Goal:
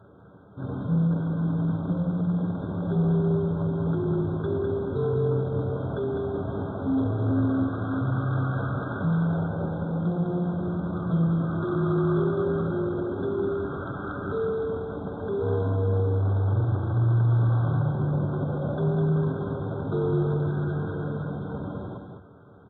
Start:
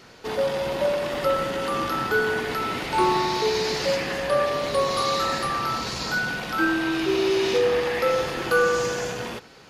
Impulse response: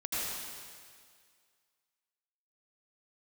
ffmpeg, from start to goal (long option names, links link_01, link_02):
-af "asetrate=18846,aresample=44100,aecho=1:1:7.5:0.6,aresample=11025,asoftclip=type=hard:threshold=-20.5dB,aresample=44100,lowshelf=frequency=480:gain=10,bandreject=frequency=50:width_type=h:width=6,bandreject=frequency=100:width_type=h:width=6,bandreject=frequency=150:width_type=h:width=6,bandreject=frequency=200:width_type=h:width=6,bandreject=frequency=250:width_type=h:width=6,bandreject=frequency=300:width_type=h:width=6,bandreject=frequency=350:width_type=h:width=6,bandreject=frequency=400:width_type=h:width=6,bandreject=frequency=450:width_type=h:width=6,asetrate=31183,aresample=44100,atempo=1.41421,highpass=120,equalizer=frequency=880:width_type=o:width=0.77:gain=-3,aecho=1:1:204:0.562,afftfilt=real='re*eq(mod(floor(b*sr/1024/1600),2),0)':imag='im*eq(mod(floor(b*sr/1024/1600),2),0)':win_size=1024:overlap=0.75,volume=-6dB"